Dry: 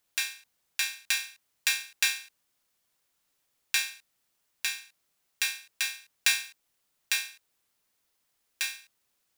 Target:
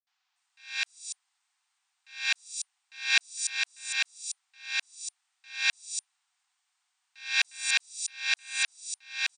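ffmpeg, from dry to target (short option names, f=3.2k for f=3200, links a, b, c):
-filter_complex "[0:a]areverse,afftfilt=real='re*between(b*sr/4096,700,9200)':imag='im*between(b*sr/4096,700,9200)':win_size=4096:overlap=0.75,acrossover=split=5800[a][b];[b]adelay=290[c];[a][c]amix=inputs=2:normalize=0,volume=2.5dB"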